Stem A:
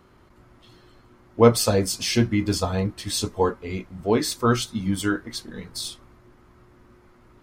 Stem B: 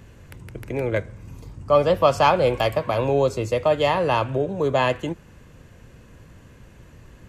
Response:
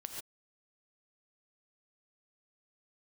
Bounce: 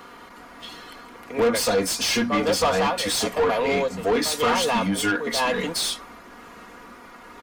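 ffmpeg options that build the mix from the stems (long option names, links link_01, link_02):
-filter_complex "[0:a]bandreject=frequency=60:width_type=h:width=6,bandreject=frequency=120:width_type=h:width=6,bandreject=frequency=180:width_type=h:width=6,bandreject=frequency=240:width_type=h:width=6,acompressor=threshold=-30dB:ratio=2,asoftclip=type=hard:threshold=-19.5dB,volume=-0.5dB[link_01];[1:a]tremolo=f=1:d=0.82,adelay=600,volume=-11.5dB[link_02];[link_01][link_02]amix=inputs=2:normalize=0,highshelf=frequency=8700:gain=11,aecho=1:1:4.2:0.64,asplit=2[link_03][link_04];[link_04]highpass=frequency=720:poles=1,volume=22dB,asoftclip=type=tanh:threshold=-12.5dB[link_05];[link_03][link_05]amix=inputs=2:normalize=0,lowpass=frequency=3400:poles=1,volume=-6dB"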